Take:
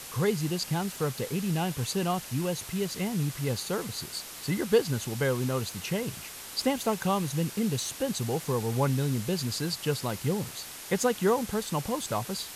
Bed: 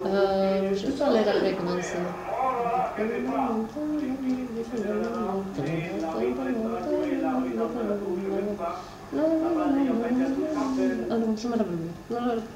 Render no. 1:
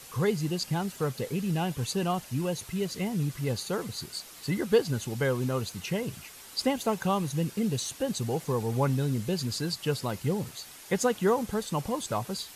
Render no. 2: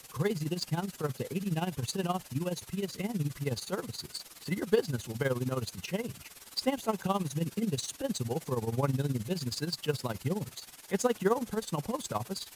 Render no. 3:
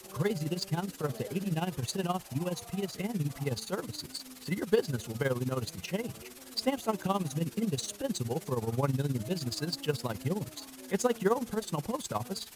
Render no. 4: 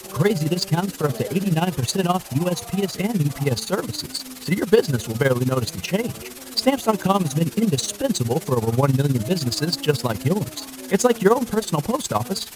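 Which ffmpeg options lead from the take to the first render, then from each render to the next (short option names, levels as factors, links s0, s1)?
-af "afftdn=nr=7:nf=-43"
-filter_complex "[0:a]acrossover=split=120|1400[s0][s1][s2];[s2]acrusher=bits=4:mode=log:mix=0:aa=0.000001[s3];[s0][s1][s3]amix=inputs=3:normalize=0,tremolo=f=19:d=0.77"
-filter_complex "[1:a]volume=0.0562[s0];[0:a][s0]amix=inputs=2:normalize=0"
-af "volume=3.76,alimiter=limit=0.708:level=0:latency=1"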